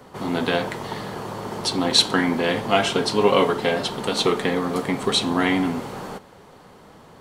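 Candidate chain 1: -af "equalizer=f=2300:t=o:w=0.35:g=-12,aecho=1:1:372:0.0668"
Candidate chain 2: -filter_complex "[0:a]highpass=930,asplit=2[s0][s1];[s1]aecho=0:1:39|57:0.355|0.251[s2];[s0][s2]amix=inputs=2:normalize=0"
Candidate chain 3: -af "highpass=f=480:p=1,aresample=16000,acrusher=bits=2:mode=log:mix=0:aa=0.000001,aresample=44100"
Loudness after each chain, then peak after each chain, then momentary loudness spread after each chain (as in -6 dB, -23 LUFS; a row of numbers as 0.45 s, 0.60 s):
-22.5 LUFS, -23.5 LUFS, -23.0 LUFS; -4.0 dBFS, -2.5 dBFS, -2.0 dBFS; 13 LU, 18 LU, 16 LU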